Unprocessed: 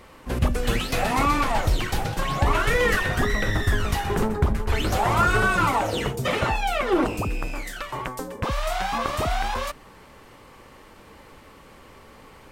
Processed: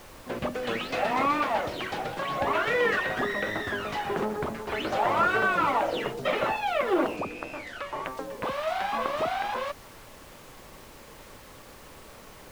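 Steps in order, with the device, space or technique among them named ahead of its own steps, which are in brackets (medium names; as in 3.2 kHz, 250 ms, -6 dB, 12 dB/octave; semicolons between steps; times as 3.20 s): horn gramophone (band-pass 250–3600 Hz; peaking EQ 600 Hz +5 dB 0.3 oct; wow and flutter; pink noise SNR 20 dB); 7.16–8.05 s: treble shelf 12 kHz -11.5 dB; trim -3 dB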